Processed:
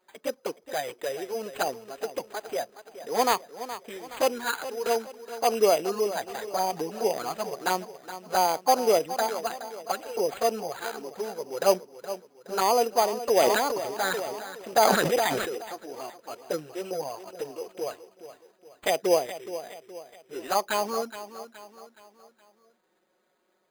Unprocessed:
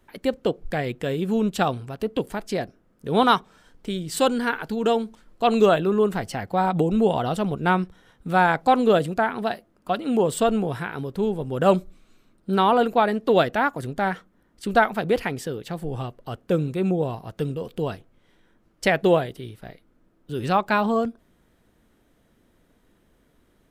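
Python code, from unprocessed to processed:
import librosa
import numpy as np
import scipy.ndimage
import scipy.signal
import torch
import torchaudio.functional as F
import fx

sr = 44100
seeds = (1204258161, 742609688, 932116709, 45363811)

y = scipy.ndimage.median_filter(x, 9, mode='constant')
y = scipy.signal.sosfilt(scipy.signal.cheby1(2, 1.0, 520.0, 'highpass', fs=sr, output='sos'), y)
y = fx.env_flanger(y, sr, rest_ms=5.5, full_db=-17.5)
y = fx.echo_feedback(y, sr, ms=420, feedback_pct=45, wet_db=-13.0)
y = np.repeat(y[::8], 8)[:len(y)]
y = fx.sustainer(y, sr, db_per_s=29.0, at=(13.39, 15.55))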